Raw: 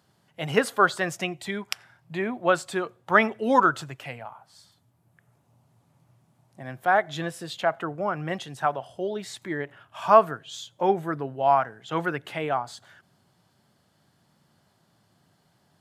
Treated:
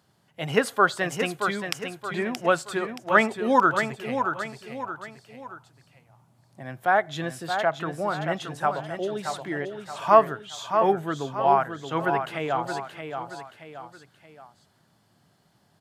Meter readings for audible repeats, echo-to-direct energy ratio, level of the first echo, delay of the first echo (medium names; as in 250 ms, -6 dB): 3, -6.0 dB, -7.0 dB, 625 ms